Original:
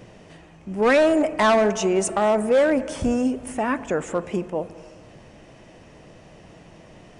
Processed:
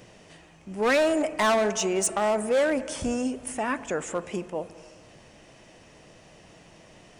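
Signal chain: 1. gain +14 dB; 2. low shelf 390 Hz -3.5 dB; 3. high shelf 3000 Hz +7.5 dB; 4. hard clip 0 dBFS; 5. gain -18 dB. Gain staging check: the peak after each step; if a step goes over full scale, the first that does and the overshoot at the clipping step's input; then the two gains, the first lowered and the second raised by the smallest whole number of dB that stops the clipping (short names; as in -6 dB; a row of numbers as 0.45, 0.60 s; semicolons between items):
+2.5, +3.5, +7.0, 0.0, -18.0 dBFS; step 1, 7.0 dB; step 1 +7 dB, step 5 -11 dB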